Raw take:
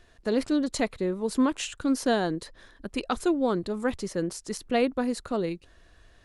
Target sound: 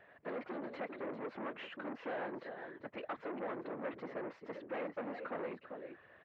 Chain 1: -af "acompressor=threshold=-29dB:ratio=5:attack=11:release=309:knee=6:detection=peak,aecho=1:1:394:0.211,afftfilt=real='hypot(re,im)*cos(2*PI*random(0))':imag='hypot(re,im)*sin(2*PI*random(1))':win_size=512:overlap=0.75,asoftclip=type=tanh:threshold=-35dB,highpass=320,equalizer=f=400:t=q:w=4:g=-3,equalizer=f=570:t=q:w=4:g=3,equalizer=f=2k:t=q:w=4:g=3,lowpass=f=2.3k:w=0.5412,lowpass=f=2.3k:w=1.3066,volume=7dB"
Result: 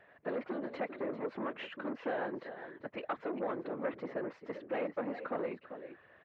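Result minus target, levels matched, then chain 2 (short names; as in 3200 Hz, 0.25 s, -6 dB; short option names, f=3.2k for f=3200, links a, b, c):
soft clip: distortion -6 dB
-af "acompressor=threshold=-29dB:ratio=5:attack=11:release=309:knee=6:detection=peak,aecho=1:1:394:0.211,afftfilt=real='hypot(re,im)*cos(2*PI*random(0))':imag='hypot(re,im)*sin(2*PI*random(1))':win_size=512:overlap=0.75,asoftclip=type=tanh:threshold=-43dB,highpass=320,equalizer=f=400:t=q:w=4:g=-3,equalizer=f=570:t=q:w=4:g=3,equalizer=f=2k:t=q:w=4:g=3,lowpass=f=2.3k:w=0.5412,lowpass=f=2.3k:w=1.3066,volume=7dB"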